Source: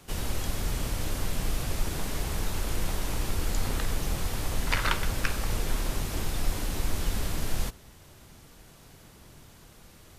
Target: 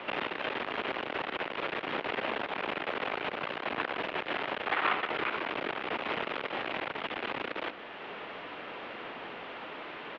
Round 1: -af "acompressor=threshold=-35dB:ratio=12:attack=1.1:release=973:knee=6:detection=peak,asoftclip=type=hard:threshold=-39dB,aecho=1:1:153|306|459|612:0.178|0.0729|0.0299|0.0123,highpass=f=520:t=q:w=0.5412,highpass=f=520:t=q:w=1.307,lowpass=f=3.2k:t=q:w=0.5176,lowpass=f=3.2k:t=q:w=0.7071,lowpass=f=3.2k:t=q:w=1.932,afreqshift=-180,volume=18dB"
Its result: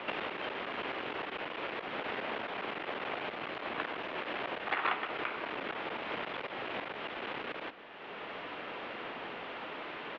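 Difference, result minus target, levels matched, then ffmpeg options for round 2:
compressor: peak gain reduction +8 dB
-af "acompressor=threshold=-26.5dB:ratio=12:attack=1.1:release=973:knee=6:detection=peak,asoftclip=type=hard:threshold=-39dB,aecho=1:1:153|306|459|612:0.178|0.0729|0.0299|0.0123,highpass=f=520:t=q:w=0.5412,highpass=f=520:t=q:w=1.307,lowpass=f=3.2k:t=q:w=0.5176,lowpass=f=3.2k:t=q:w=0.7071,lowpass=f=3.2k:t=q:w=1.932,afreqshift=-180,volume=18dB"

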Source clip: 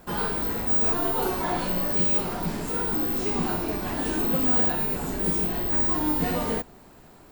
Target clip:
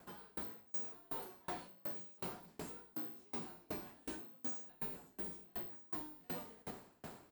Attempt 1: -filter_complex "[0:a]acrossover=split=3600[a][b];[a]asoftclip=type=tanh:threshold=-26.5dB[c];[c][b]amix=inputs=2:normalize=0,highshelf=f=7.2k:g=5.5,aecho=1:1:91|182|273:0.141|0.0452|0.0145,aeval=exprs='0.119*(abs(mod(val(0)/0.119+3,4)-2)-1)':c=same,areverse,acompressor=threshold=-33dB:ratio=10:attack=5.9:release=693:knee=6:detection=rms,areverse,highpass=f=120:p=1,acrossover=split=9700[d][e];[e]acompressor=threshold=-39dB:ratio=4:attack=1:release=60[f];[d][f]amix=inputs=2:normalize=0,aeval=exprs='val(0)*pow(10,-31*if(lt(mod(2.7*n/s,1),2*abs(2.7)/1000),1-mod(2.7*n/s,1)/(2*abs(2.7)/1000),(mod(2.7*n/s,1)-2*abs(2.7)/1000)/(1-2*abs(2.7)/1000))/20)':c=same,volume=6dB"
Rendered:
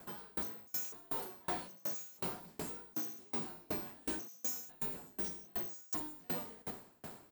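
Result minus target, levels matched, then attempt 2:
8000 Hz band +6.5 dB; compressor: peak gain reduction -6.5 dB
-filter_complex "[0:a]acrossover=split=3600[a][b];[a]asoftclip=type=tanh:threshold=-26.5dB[c];[c][b]amix=inputs=2:normalize=0,aecho=1:1:91|182|273:0.141|0.0452|0.0145,aeval=exprs='0.119*(abs(mod(val(0)/0.119+3,4)-2)-1)':c=same,areverse,acompressor=threshold=-40dB:ratio=10:attack=5.9:release=693:knee=6:detection=rms,areverse,highpass=f=120:p=1,acrossover=split=9700[d][e];[e]acompressor=threshold=-39dB:ratio=4:attack=1:release=60[f];[d][f]amix=inputs=2:normalize=0,aeval=exprs='val(0)*pow(10,-31*if(lt(mod(2.7*n/s,1),2*abs(2.7)/1000),1-mod(2.7*n/s,1)/(2*abs(2.7)/1000),(mod(2.7*n/s,1)-2*abs(2.7)/1000)/(1-2*abs(2.7)/1000))/20)':c=same,volume=6dB"

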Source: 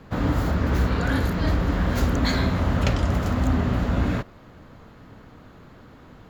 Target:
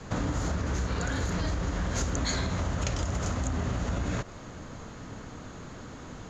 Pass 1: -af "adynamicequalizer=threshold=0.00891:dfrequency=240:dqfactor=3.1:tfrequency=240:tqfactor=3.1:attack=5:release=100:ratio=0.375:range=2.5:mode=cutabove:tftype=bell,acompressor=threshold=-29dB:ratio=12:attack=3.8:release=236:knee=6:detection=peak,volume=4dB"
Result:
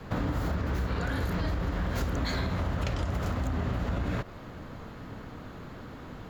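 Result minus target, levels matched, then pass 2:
8000 Hz band -12.5 dB
-af "adynamicequalizer=threshold=0.00891:dfrequency=240:dqfactor=3.1:tfrequency=240:tqfactor=3.1:attack=5:release=100:ratio=0.375:range=2.5:mode=cutabove:tftype=bell,acompressor=threshold=-29dB:ratio=12:attack=3.8:release=236:knee=6:detection=peak,lowpass=f=6.7k:t=q:w=6,volume=4dB"

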